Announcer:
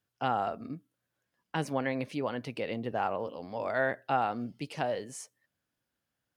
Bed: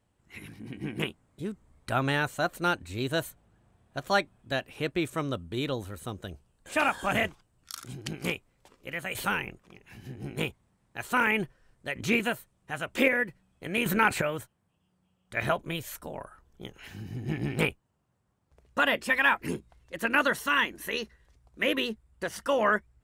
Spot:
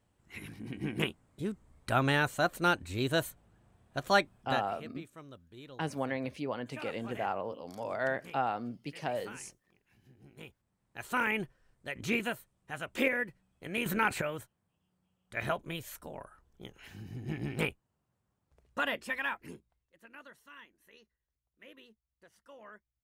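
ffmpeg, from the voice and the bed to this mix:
ffmpeg -i stem1.wav -i stem2.wav -filter_complex "[0:a]adelay=4250,volume=-3dB[link_01];[1:a]volume=13dB,afade=type=out:start_time=4.37:duration=0.5:silence=0.11885,afade=type=in:start_time=10.42:duration=0.64:silence=0.211349,afade=type=out:start_time=18.55:duration=1.35:silence=0.0794328[link_02];[link_01][link_02]amix=inputs=2:normalize=0" out.wav

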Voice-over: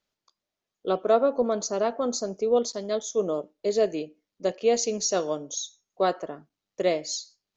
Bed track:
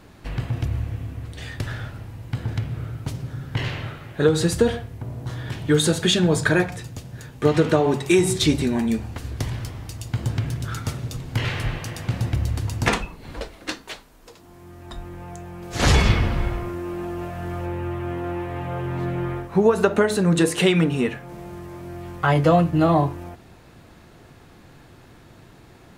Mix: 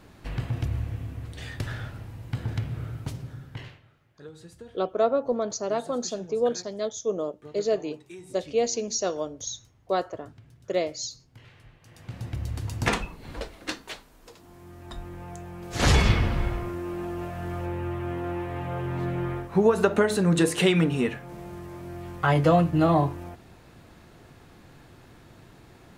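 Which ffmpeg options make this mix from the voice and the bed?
ffmpeg -i stem1.wav -i stem2.wav -filter_complex "[0:a]adelay=3900,volume=-2dB[link_01];[1:a]volume=20.5dB,afade=type=out:start_time=2.98:duration=0.82:silence=0.0668344,afade=type=in:start_time=11.8:duration=1.25:silence=0.0630957[link_02];[link_01][link_02]amix=inputs=2:normalize=0" out.wav

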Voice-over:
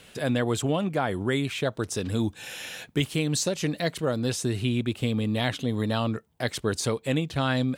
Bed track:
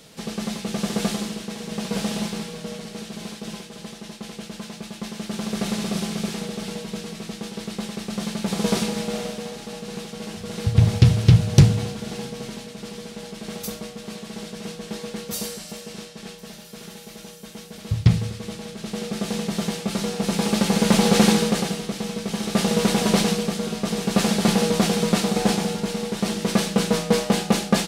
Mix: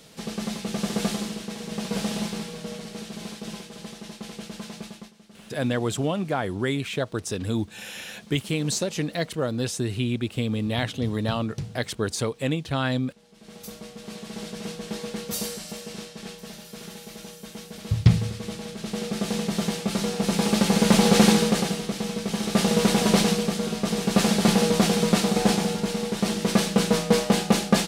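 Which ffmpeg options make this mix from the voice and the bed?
ffmpeg -i stem1.wav -i stem2.wav -filter_complex "[0:a]adelay=5350,volume=0dB[link_01];[1:a]volume=18.5dB,afade=type=out:start_time=4.82:duration=0.3:silence=0.112202,afade=type=in:start_time=13.28:duration=1.19:silence=0.0944061[link_02];[link_01][link_02]amix=inputs=2:normalize=0" out.wav

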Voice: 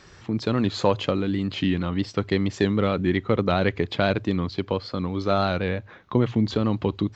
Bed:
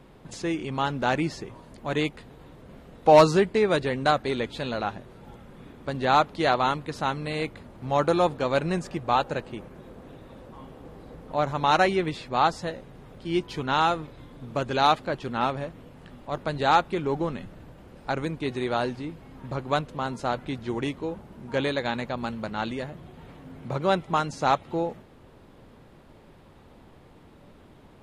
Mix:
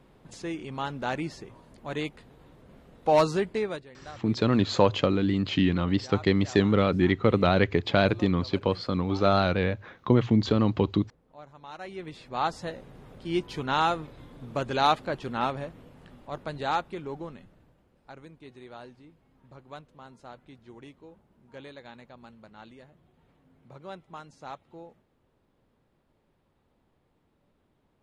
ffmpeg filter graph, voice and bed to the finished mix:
ffmpeg -i stem1.wav -i stem2.wav -filter_complex "[0:a]adelay=3950,volume=0dB[link_01];[1:a]volume=14.5dB,afade=type=out:start_time=3.59:duration=0.26:silence=0.149624,afade=type=in:start_time=11.79:duration=1.08:silence=0.0944061,afade=type=out:start_time=15.31:duration=2.59:silence=0.149624[link_02];[link_01][link_02]amix=inputs=2:normalize=0" out.wav

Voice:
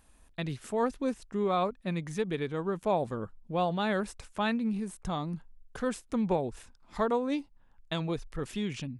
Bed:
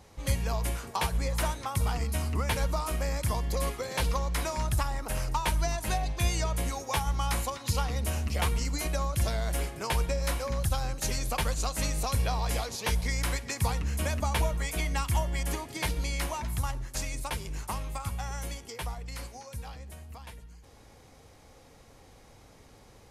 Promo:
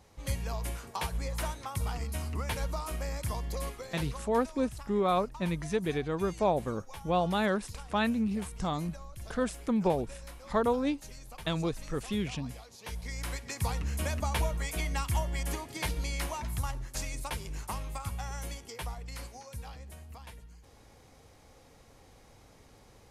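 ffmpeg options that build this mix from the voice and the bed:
ffmpeg -i stem1.wav -i stem2.wav -filter_complex "[0:a]adelay=3550,volume=1dB[link_01];[1:a]volume=9.5dB,afade=type=out:start_time=3.46:duration=0.96:silence=0.251189,afade=type=in:start_time=12.71:duration=1.1:silence=0.188365[link_02];[link_01][link_02]amix=inputs=2:normalize=0" out.wav

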